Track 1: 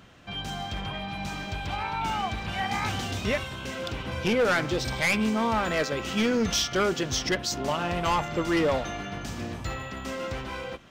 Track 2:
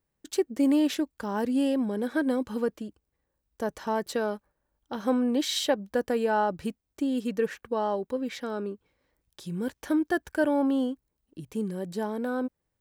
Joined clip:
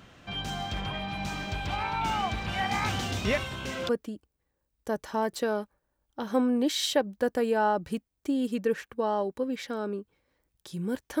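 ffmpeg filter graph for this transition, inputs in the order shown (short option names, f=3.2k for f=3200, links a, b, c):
-filter_complex "[0:a]apad=whole_dur=11.2,atrim=end=11.2,atrim=end=3.892[a];[1:a]atrim=start=2.618:end=9.93[b];[a][b]acrossfade=d=0.004:c1=hsin:c2=hsin"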